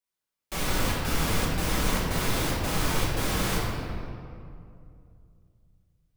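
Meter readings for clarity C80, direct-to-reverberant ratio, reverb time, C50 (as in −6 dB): 0.5 dB, −7.0 dB, 2.5 s, −1.0 dB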